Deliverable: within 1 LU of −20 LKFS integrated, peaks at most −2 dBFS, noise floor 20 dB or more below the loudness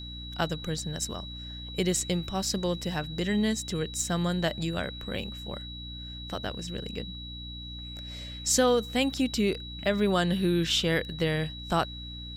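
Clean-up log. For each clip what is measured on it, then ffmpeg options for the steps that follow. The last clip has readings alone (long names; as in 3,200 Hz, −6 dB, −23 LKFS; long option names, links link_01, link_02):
mains hum 60 Hz; hum harmonics up to 300 Hz; level of the hum −40 dBFS; interfering tone 3,900 Hz; level of the tone −41 dBFS; integrated loudness −29.5 LKFS; sample peak −11.0 dBFS; target loudness −20.0 LKFS
→ -af "bandreject=frequency=60:width_type=h:width=4,bandreject=frequency=120:width_type=h:width=4,bandreject=frequency=180:width_type=h:width=4,bandreject=frequency=240:width_type=h:width=4,bandreject=frequency=300:width_type=h:width=4"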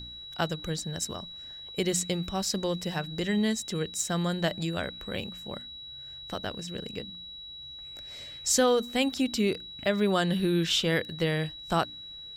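mains hum none found; interfering tone 3,900 Hz; level of the tone −41 dBFS
→ -af "bandreject=frequency=3900:width=30"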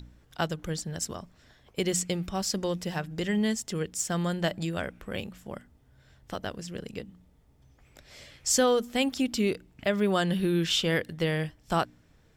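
interfering tone none found; integrated loudness −29.5 LKFS; sample peak −12.0 dBFS; target loudness −20.0 LKFS
→ -af "volume=9.5dB"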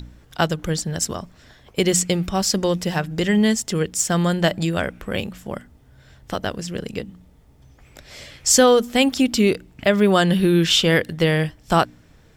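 integrated loudness −20.0 LKFS; sample peak −2.5 dBFS; background noise floor −52 dBFS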